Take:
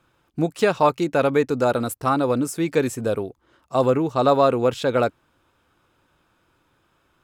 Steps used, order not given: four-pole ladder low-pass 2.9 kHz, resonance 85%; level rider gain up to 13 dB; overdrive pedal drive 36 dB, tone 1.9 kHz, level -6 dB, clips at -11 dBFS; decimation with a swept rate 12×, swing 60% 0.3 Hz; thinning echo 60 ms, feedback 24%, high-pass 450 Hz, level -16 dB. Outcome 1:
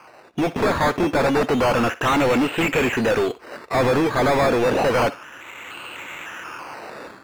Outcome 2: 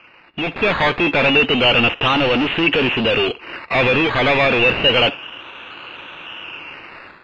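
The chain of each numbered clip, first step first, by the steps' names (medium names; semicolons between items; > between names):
level rider > four-pole ladder low-pass > decimation with a swept rate > overdrive pedal > thinning echo; overdrive pedal > thinning echo > decimation with a swept rate > four-pole ladder low-pass > level rider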